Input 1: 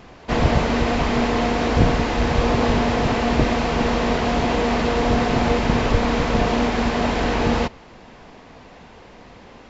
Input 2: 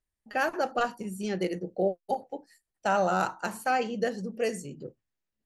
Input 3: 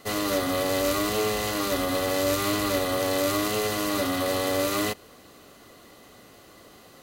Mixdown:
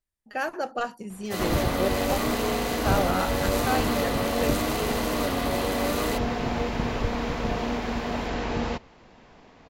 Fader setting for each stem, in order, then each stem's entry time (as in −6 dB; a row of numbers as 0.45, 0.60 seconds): −8.5, −1.5, −4.0 decibels; 1.10, 0.00, 1.25 seconds